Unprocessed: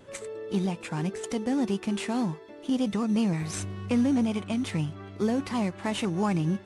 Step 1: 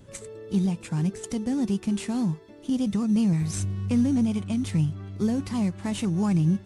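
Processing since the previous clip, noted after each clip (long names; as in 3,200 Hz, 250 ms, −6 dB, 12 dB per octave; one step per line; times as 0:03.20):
bass and treble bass +14 dB, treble +8 dB
level −5.5 dB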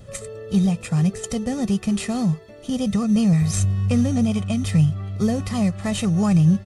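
comb filter 1.6 ms, depth 65%
level +5.5 dB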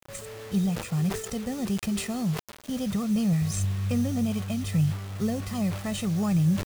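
bit-depth reduction 6 bits, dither none
level that may fall only so fast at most 95 dB per second
level −7 dB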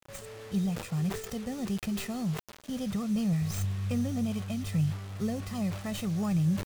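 stylus tracing distortion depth 0.11 ms
level −4 dB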